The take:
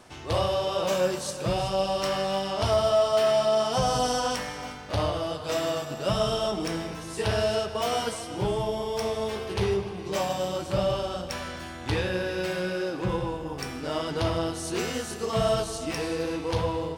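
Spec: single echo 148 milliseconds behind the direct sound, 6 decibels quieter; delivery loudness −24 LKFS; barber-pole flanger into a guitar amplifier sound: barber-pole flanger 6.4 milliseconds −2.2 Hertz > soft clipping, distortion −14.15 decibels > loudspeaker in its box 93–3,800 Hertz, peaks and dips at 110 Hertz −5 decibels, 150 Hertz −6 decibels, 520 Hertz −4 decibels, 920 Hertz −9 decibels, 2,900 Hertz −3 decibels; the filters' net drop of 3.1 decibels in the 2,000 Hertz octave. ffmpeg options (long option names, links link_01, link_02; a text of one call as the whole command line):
ffmpeg -i in.wav -filter_complex "[0:a]equalizer=frequency=2000:width_type=o:gain=-3,aecho=1:1:148:0.501,asplit=2[link_01][link_02];[link_02]adelay=6.4,afreqshift=-2.2[link_03];[link_01][link_03]amix=inputs=2:normalize=1,asoftclip=threshold=-24dB,highpass=93,equalizer=frequency=110:width_type=q:width=4:gain=-5,equalizer=frequency=150:width_type=q:width=4:gain=-6,equalizer=frequency=520:width_type=q:width=4:gain=-4,equalizer=frequency=920:width_type=q:width=4:gain=-9,equalizer=frequency=2900:width_type=q:width=4:gain=-3,lowpass=frequency=3800:width=0.5412,lowpass=frequency=3800:width=1.3066,volume=11dB" out.wav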